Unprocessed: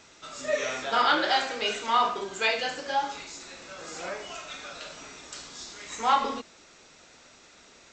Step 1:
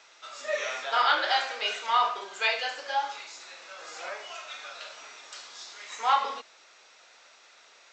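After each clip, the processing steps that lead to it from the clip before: three-band isolator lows -24 dB, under 510 Hz, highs -14 dB, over 6600 Hz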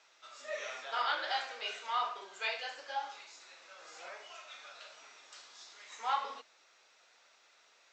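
flange 1.4 Hz, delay 6 ms, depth 7.4 ms, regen -52%; gain -5.5 dB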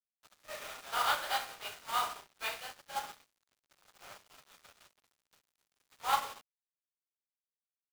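per-bin compression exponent 0.6; requantised 6-bit, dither none; upward expander 2.5:1, over -49 dBFS; gain +2.5 dB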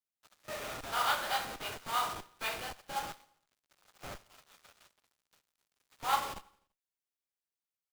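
in parallel at -4 dB: Schmitt trigger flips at -45 dBFS; on the sum: feedback echo 84 ms, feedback 56%, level -24 dB; gain -1 dB

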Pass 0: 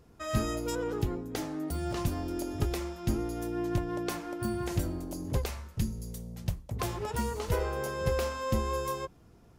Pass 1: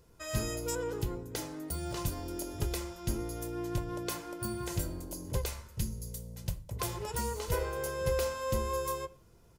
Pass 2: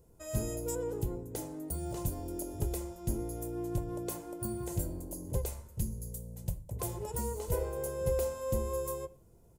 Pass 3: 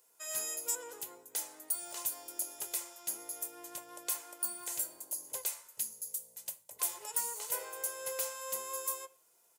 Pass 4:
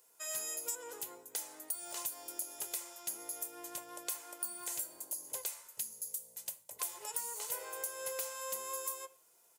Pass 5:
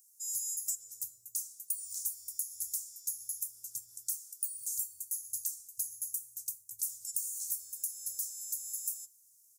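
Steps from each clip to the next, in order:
high shelf 4500 Hz +9 dB; comb 2 ms, depth 36%; on a send at -14 dB: reverb RT60 0.50 s, pre-delay 6 ms; on the sum: gain -4.5 dB
band shelf 2500 Hz -11 dB 2.7 oct
HPF 1500 Hz 12 dB/oct; gain +7.5 dB
compressor 3:1, threshold -38 dBFS, peak gain reduction 8 dB; gain +1.5 dB
elliptic band-stop 110–5900 Hz, stop band 40 dB; gain +4.5 dB

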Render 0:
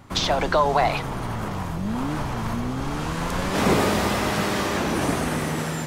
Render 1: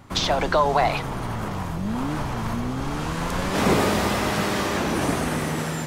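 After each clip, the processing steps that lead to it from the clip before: nothing audible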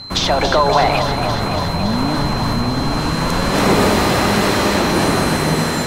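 in parallel at -1.5 dB: limiter -15 dBFS, peak gain reduction 7.5 dB; on the sum: whine 4100 Hz -32 dBFS; echo with dull and thin repeats by turns 0.141 s, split 1400 Hz, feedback 88%, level -7 dB; gain +1.5 dB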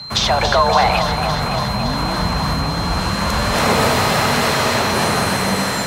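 frequency shift +36 Hz; bell 310 Hz -12 dB 0.8 oct; gain +1 dB; MP3 320 kbps 48000 Hz

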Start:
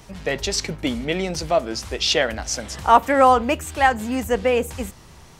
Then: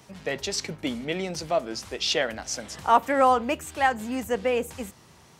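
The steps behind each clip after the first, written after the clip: HPF 110 Hz 12 dB/oct; gain -5.5 dB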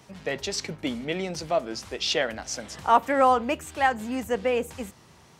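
high shelf 7300 Hz -4 dB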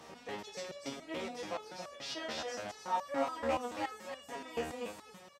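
per-bin compression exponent 0.6; echo 0.279 s -3.5 dB; stepped resonator 7 Hz 78–570 Hz; gain -6.5 dB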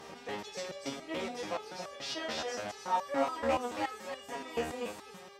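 buzz 400 Hz, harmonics 15, -59 dBFS -5 dB/oct; gain +3 dB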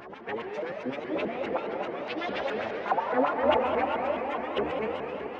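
LFO low-pass sine 7.7 Hz 370–2600 Hz; reverb RT60 5.4 s, pre-delay 70 ms, DRR 1.5 dB; shaped vibrato saw up 4.8 Hz, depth 250 cents; gain +2.5 dB

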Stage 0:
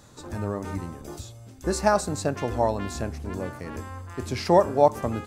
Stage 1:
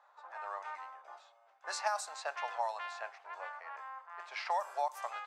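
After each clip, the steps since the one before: low-pass opened by the level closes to 1100 Hz, open at -16.5 dBFS; steep high-pass 730 Hz 36 dB/oct; compressor 4:1, threshold -30 dBFS, peak gain reduction 11 dB; gain -1.5 dB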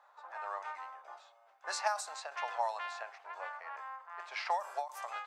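ending taper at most 160 dB/s; gain +1.5 dB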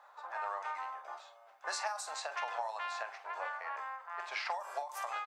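compressor 6:1, threshold -39 dBFS, peak gain reduction 12 dB; doubler 45 ms -12 dB; gain +4.5 dB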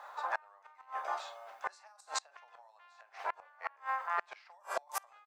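flipped gate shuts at -31 dBFS, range -31 dB; gain +9.5 dB

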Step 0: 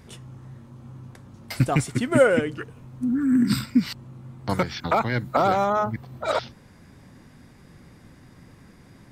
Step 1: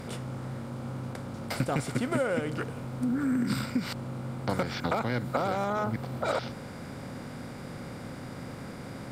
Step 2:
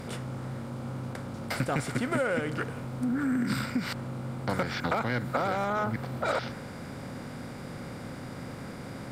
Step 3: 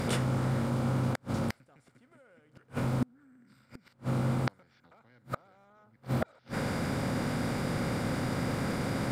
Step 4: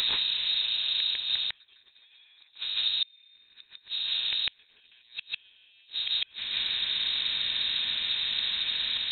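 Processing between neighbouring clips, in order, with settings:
per-bin compression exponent 0.6; compressor 6:1, threshold -18 dBFS, peak gain reduction 8.5 dB; gain -6.5 dB
dynamic EQ 1700 Hz, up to +5 dB, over -49 dBFS, Q 1.6; in parallel at -6 dB: soft clip -27 dBFS, distortion -11 dB; on the sum: gain -3 dB
reverse; upward compressor, threshold -34 dBFS; reverse; flipped gate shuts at -25 dBFS, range -39 dB; gain +7 dB
reverse echo 0.15 s -3 dB; inverted band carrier 3900 Hz; dynamic EQ 400 Hz, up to -5 dB, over -56 dBFS, Q 1

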